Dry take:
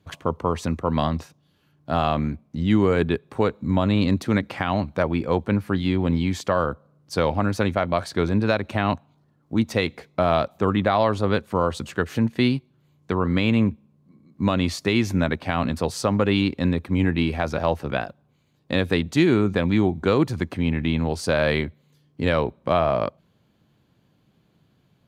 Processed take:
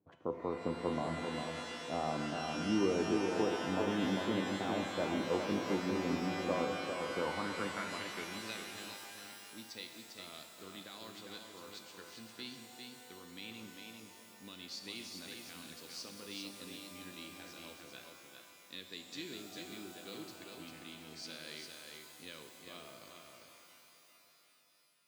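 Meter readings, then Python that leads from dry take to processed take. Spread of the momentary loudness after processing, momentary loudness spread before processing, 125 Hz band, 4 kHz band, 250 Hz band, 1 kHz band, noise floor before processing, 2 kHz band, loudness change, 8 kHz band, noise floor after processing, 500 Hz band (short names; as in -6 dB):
16 LU, 6 LU, -23.5 dB, -11.0 dB, -17.0 dB, -15.5 dB, -64 dBFS, -14.5 dB, -16.5 dB, -8.0 dB, -63 dBFS, -16.0 dB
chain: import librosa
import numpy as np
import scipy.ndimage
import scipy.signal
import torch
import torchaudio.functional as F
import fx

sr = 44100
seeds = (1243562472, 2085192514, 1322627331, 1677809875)

y = fx.comb_fb(x, sr, f0_hz=500.0, decay_s=0.58, harmonics='all', damping=0.0, mix_pct=70)
y = y + 10.0 ** (-5.0 / 20.0) * np.pad(y, (int(400 * sr / 1000.0), 0))[:len(y)]
y = fx.filter_sweep_bandpass(y, sr, from_hz=740.0, to_hz=4800.0, start_s=7.07, end_s=8.86, q=2.4)
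y = fx.low_shelf_res(y, sr, hz=470.0, db=11.5, q=1.5)
y = fx.rev_shimmer(y, sr, seeds[0], rt60_s=3.5, semitones=12, shimmer_db=-2, drr_db=6.0)
y = y * 10.0 ** (-1.0 / 20.0)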